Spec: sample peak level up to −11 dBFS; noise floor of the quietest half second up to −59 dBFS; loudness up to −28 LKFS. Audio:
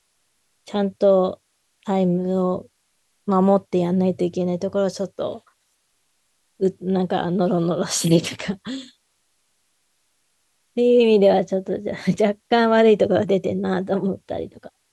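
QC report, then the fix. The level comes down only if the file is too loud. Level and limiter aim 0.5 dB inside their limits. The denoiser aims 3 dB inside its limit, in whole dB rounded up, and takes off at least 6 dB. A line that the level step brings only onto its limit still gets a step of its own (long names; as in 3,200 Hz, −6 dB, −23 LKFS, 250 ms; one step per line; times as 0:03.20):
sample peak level −4.5 dBFS: out of spec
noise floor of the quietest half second −68 dBFS: in spec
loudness −20.5 LKFS: out of spec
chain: level −8 dB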